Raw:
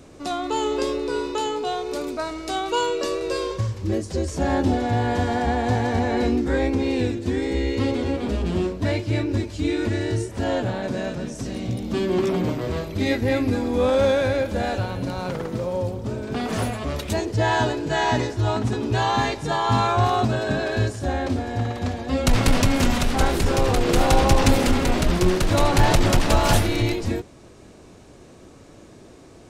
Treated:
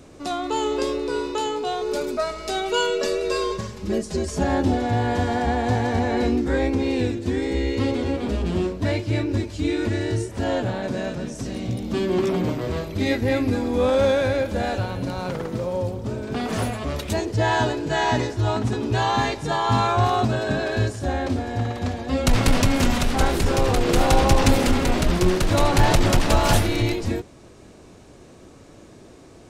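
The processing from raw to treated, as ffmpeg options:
-filter_complex "[0:a]asettb=1/sr,asplit=3[a][b][c];[a]atrim=end=1.814[d];[b]atrim=start=1.81:end=4.44,asetpts=PTS-STARTPTS,afade=t=in:d=0.004:c=qsin,afade=t=out:st=2.626:d=0.004:c=qsin,aecho=1:1:4.8:0.82,atrim=end_sample=115983[e];[c]atrim=start=4.436[f];[d][e]acrossfade=d=0.004:c1=hsin:c2=qsin[g];[g][f]acrossfade=d=0.004:c1=qsin:c2=hsin"

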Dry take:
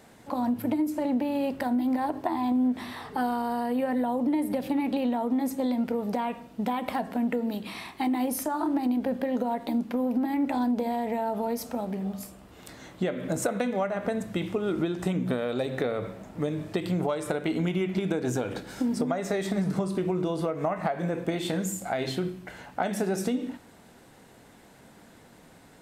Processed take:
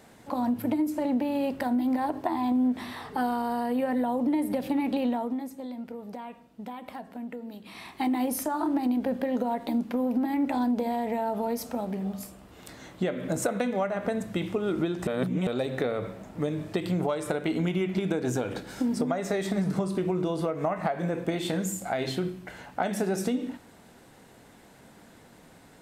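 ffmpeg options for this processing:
-filter_complex "[0:a]asplit=5[a][b][c][d][e];[a]atrim=end=5.49,asetpts=PTS-STARTPTS,afade=t=out:st=5.1:d=0.39:silence=0.298538[f];[b]atrim=start=5.49:end=7.63,asetpts=PTS-STARTPTS,volume=-10.5dB[g];[c]atrim=start=7.63:end=15.072,asetpts=PTS-STARTPTS,afade=t=in:d=0.39:silence=0.298538[h];[d]atrim=start=15.068:end=15.472,asetpts=PTS-STARTPTS,areverse[i];[e]atrim=start=15.468[j];[f][g][h]concat=n=3:v=0:a=1[k];[k][i]acrossfade=d=0.004:c1=hsin:c2=hsin[l];[l][j]acrossfade=d=0.004:c1=hsin:c2=hsin"

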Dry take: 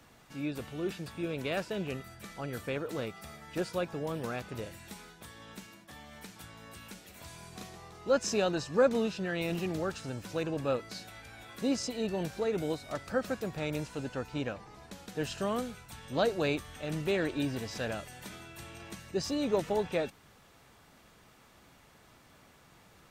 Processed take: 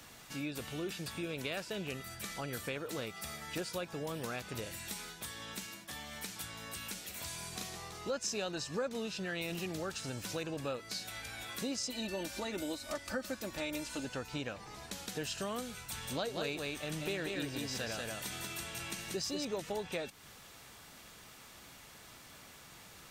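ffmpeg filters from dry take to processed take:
-filter_complex "[0:a]asettb=1/sr,asplit=3[a][b][c];[a]atrim=end=11.894[d];[b]atrim=start=11.89:end=14.05,asetpts=PTS-STARTPTS,afade=t=in:d=0.004:c=qsin,afade=t=out:st=2.156:d=0.004:c=qsin,aecho=1:1:3.4:0.71,atrim=end_sample=95256[e];[c]atrim=start=14.046[f];[d][e]acrossfade=d=0.004:c1=hsin:c2=qsin[g];[g][f]acrossfade=d=0.004:c1=qsin:c2=hsin,asettb=1/sr,asplit=3[h][i][j];[h]atrim=end=15.754[k];[i]atrim=start=15.75:end=19.45,asetpts=PTS-STARTPTS,afade=t=in:d=0.004:c=qsin,afade=t=out:st=3.696:d=0.004:c=qsin,aecho=1:1:186:0.631,atrim=end_sample=163170[l];[j]atrim=start=19.446[m];[k][l]acrossfade=d=0.004:c1=hsin:c2=qsin[n];[n][m]acrossfade=d=0.004:c1=qsin:c2=hsin,highshelf=f=2.1k:g=10,acompressor=threshold=-39dB:ratio=3,volume=1dB"

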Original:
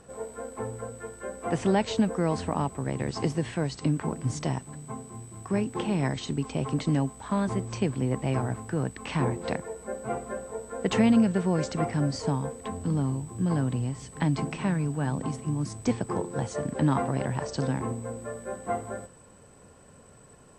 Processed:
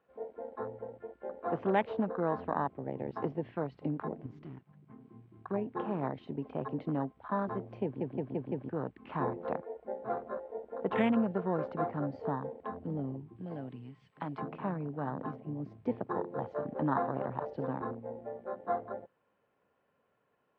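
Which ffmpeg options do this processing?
-filter_complex "[0:a]asettb=1/sr,asplit=3[a][b][c];[a]atrim=end=4.264[d];[b]atrim=start=4.26:end=5.01,asetpts=PTS-STARTPTS,afade=t=in:d=0.004:c=qsin,afade=t=out:st=0.746:d=0.004:c=qsin,aeval=exprs='(tanh(35.5*val(0)+0.7)-tanh(0.7))/35.5':c=same[e];[c]atrim=start=5.006[f];[d][e]acrossfade=d=0.004:c1=hsin:c2=qsin[g];[g][f]acrossfade=d=0.004:c1=qsin:c2=hsin,asettb=1/sr,asplit=3[h][i][j];[h]atrim=end=13.364[k];[i]atrim=start=13.36:end=14.41,asetpts=PTS-STARTPTS,afade=t=in:d=0.004:c=qsin,afade=t=out:st=1.046:d=0.004:c=qsin,tiltshelf=f=1.4k:g=-6.5[l];[j]atrim=start=14.406[m];[k][l]acrossfade=d=0.004:c1=hsin:c2=qsin[n];[n][m]acrossfade=d=0.004:c1=qsin:c2=hsin,asplit=6[o][p][q][r][s][t];[o]atrim=end=8.012[u];[p]atrim=start=7.838:end=8.012[v];[q]atrim=start=7.838:end=8.012[w];[r]atrim=start=7.838:end=8.012[x];[s]atrim=start=7.838:end=8.012[y];[t]atrim=start=8.688[z];[u][v]acrossfade=d=0.004:c1=hsin:c2=hsin[aa];[aa][w]acrossfade=d=0.004:c1=hsin:c2=hsin[ab];[ab][x]acrossfade=d=0.004:c1=hsin:c2=hsin[ac];[ac][y]acrossfade=d=0.004:c1=hsin:c2=hsin[ad];[ad][z]acrossfade=d=0.004:c1=hsin:c2=hsin,lowpass=f=3k:w=0.5412,lowpass=f=3k:w=1.3066,afwtdn=0.0224,highpass=f=560:p=1"

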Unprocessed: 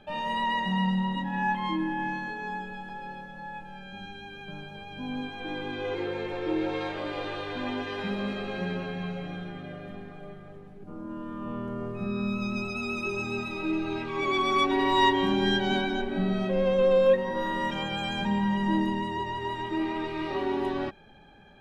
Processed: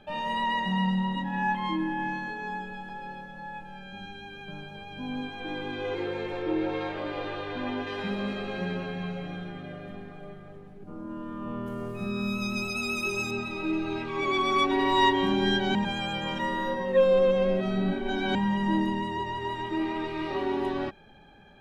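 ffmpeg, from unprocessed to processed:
-filter_complex "[0:a]asettb=1/sr,asplit=3[a][b][c];[a]atrim=end=6.424[d];[b]atrim=start=6.42:end=7.87,asetpts=PTS-STARTPTS,afade=t=in:d=0.004:c=qsin,afade=t=out:st=1.446:d=0.004:c=qsin,aemphasis=mode=reproduction:type=cd[e];[c]atrim=start=7.866[f];[d][e]acrossfade=d=0.004:c1=hsin:c2=qsin[g];[g][f]acrossfade=d=0.004:c1=qsin:c2=hsin,asettb=1/sr,asplit=3[h][i][j];[h]atrim=end=11.664[k];[i]atrim=start=11.66:end=13.31,asetpts=PTS-STARTPTS,afade=t=in:d=0.004:c=qsin,afade=t=out:st=1.646:d=0.004:c=qsin,aemphasis=mode=production:type=75fm[l];[j]atrim=start=13.306[m];[k][l]acrossfade=d=0.004:c1=hsin:c2=qsin[n];[n][m]acrossfade=d=0.004:c1=qsin:c2=hsin,asplit=3[o][p][q];[o]atrim=end=15.752[r];[p]atrim=start=15.748:end=18.352,asetpts=PTS-STARTPTS,areverse[s];[q]atrim=start=18.348[t];[r][s]acrossfade=d=0.004:c1=hsin:c2=hsin[u];[u][t]acrossfade=d=0.004:c1=hsin:c2=hsin"

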